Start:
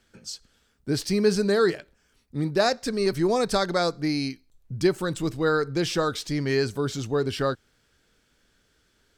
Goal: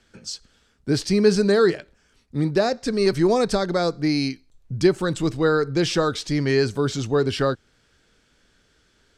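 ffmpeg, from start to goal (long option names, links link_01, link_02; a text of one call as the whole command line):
ffmpeg -i in.wav -filter_complex "[0:a]lowpass=8700,acrossover=split=570[link_01][link_02];[link_02]alimiter=limit=-20dB:level=0:latency=1:release=351[link_03];[link_01][link_03]amix=inputs=2:normalize=0,volume=4.5dB" out.wav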